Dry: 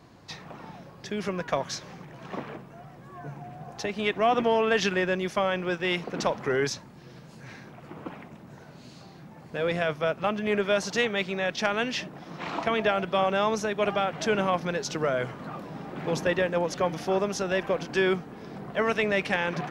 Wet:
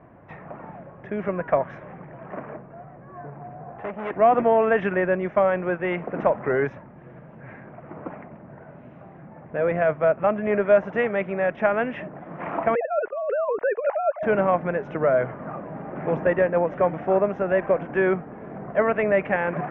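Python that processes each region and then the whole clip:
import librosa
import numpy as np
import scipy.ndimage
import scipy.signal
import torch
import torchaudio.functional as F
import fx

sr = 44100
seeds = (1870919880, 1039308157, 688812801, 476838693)

y = fx.chain(x, sr, fx.resample_bad(factor=6, down='filtered', up='hold'),
    fx.transformer_sat(knee_hz=3100.0), at=(2.23, 4.11))
y = fx.chain(y, sr, fx.sine_speech(),
    fx.air_absorb(metres=310.0),
    fx.over_compress(threshold_db=-29.0, ratio=-0.5), at=(12.75, 14.23))
y = scipy.signal.sosfilt(scipy.signal.cheby2(4, 40, 4100.0, 'lowpass', fs=sr, output='sos'), y)
y = fx.peak_eq(y, sr, hz=620.0, db=7.0, octaves=0.42)
y = y * 10.0 ** (2.5 / 20.0)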